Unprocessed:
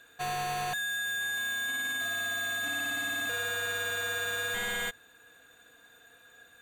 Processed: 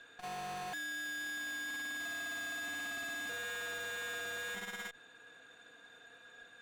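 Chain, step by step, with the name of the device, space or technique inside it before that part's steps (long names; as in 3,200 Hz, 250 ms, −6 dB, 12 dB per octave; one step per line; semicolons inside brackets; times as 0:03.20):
valve radio (band-pass filter 130–5,500 Hz; tube saturation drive 41 dB, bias 0.35; saturating transformer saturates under 220 Hz)
level +1.5 dB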